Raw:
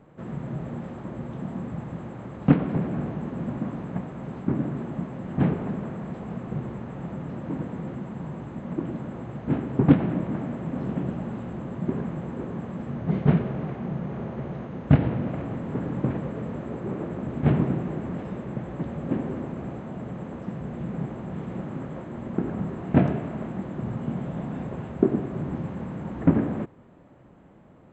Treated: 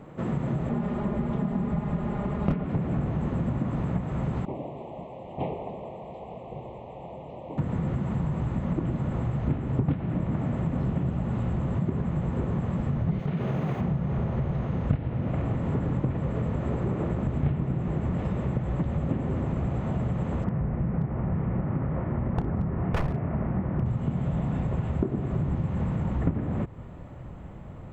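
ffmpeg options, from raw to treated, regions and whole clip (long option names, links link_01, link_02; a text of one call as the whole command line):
ffmpeg -i in.wav -filter_complex "[0:a]asettb=1/sr,asplit=3[link_01][link_02][link_03];[link_01]atrim=end=0.694[link_04];[link_02]atrim=start=0.69:end=2.64,asetpts=PTS-STARTPTS,afade=type=in:duration=0.004:curve=qsin,afade=type=out:start_time=1.946:duration=0.004:curve=qsin,lowpass=frequency=2700:poles=1,aecho=1:1:4.9:0.88,atrim=end_sample=85995,volume=11.5dB,asoftclip=hard,volume=-11.5dB[link_05];[link_03]atrim=start=2.636[link_06];[link_04][link_05]acrossfade=duration=0.004:curve1=hsin:curve2=qsin[link_07];[link_07][link_06]acrossfade=duration=0.004:curve1=qsin:curve2=hsin,asettb=1/sr,asplit=3[link_08][link_09][link_10];[link_08]atrim=end=4.454[link_11];[link_09]atrim=start=4.45:end=7.58,asetpts=PTS-STARTPTS,afade=type=in:duration=0.004:curve=qsin,afade=type=out:start_time=3.126:duration=0.004:curve=qsin,asuperstop=centerf=1500:order=4:qfactor=0.76,acrossover=split=490 2800:gain=0.0631 1 0.1[link_12][link_13][link_14];[link_12][link_13][link_14]amix=inputs=3:normalize=0[link_15];[link_10]atrim=start=7.576[link_16];[link_11][link_15]acrossfade=duration=0.004:curve1=hsin:curve2=qsin[link_17];[link_17][link_16]acrossfade=duration=0.004:curve1=qsin:curve2=hsin,asettb=1/sr,asplit=3[link_18][link_19][link_20];[link_18]atrim=end=13.194[link_21];[link_19]atrim=start=13.19:end=13.81,asetpts=PTS-STARTPTS,afade=type=in:duration=0.004:curve=qsin,afade=type=out:start_time=0.616:duration=0.004:curve=qsin,highpass=150,aemphasis=mode=production:type=50fm,acompressor=threshold=-27dB:ratio=5:attack=3.2:release=140:knee=1:detection=peak[link_22];[link_20]atrim=start=13.806[link_23];[link_21][link_22]acrossfade=duration=0.004:curve1=hsin:curve2=qsin[link_24];[link_24][link_23]acrossfade=duration=0.004:curve1=qsin:curve2=hsin,asettb=1/sr,asplit=3[link_25][link_26][link_27];[link_25]atrim=end=20.444[link_28];[link_26]atrim=start=20.44:end=23.86,asetpts=PTS-STARTPTS,afade=type=in:duration=0.004:curve=qsin,afade=type=out:start_time=3.416:duration=0.004:curve=qsin,lowpass=frequency=2200:width=0.5412,lowpass=frequency=2200:width=1.3066,aeval=exprs='0.0944*(abs(mod(val(0)/0.0944+3,4)-2)-1)':channel_layout=same[link_29];[link_27]atrim=start=23.856[link_30];[link_28][link_29]acrossfade=duration=0.004:curve1=hsin:curve2=qsin[link_31];[link_31][link_30]acrossfade=duration=0.004:curve1=qsin:curve2=hsin,bandreject=frequency=1600:width=15,asubboost=boost=5:cutoff=110,acompressor=threshold=-32dB:ratio=6,volume=8dB" out.wav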